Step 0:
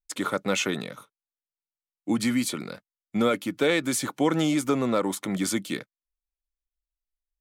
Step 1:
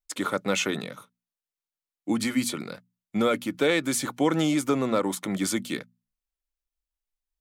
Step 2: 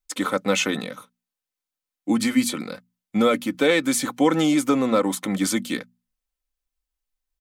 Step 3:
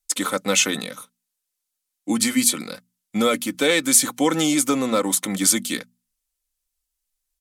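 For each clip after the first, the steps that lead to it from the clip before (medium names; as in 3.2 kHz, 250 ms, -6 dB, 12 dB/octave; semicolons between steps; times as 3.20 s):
hum notches 60/120/180/240 Hz
comb 3.9 ms, depth 42%; trim +3 dB
peaking EQ 10 kHz +13 dB 2.3 oct; trim -1.5 dB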